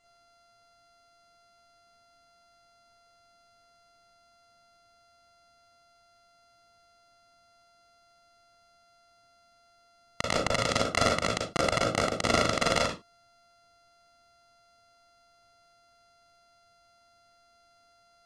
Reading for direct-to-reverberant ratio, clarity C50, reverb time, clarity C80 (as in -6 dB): 0.0 dB, 5.0 dB, no single decay rate, 13.0 dB